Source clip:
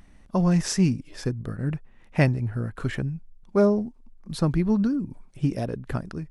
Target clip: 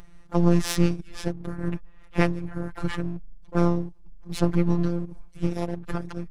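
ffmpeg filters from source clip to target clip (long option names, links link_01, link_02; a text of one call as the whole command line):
ffmpeg -i in.wav -filter_complex "[0:a]asplit=4[link_01][link_02][link_03][link_04];[link_02]asetrate=22050,aresample=44100,atempo=2,volume=-9dB[link_05];[link_03]asetrate=29433,aresample=44100,atempo=1.49831,volume=-4dB[link_06];[link_04]asetrate=58866,aresample=44100,atempo=0.749154,volume=-14dB[link_07];[link_01][link_05][link_06][link_07]amix=inputs=4:normalize=0,afftfilt=real='hypot(re,im)*cos(PI*b)':imag='0':win_size=1024:overlap=0.75,aeval=exprs='max(val(0),0)':channel_layout=same,volume=3dB" out.wav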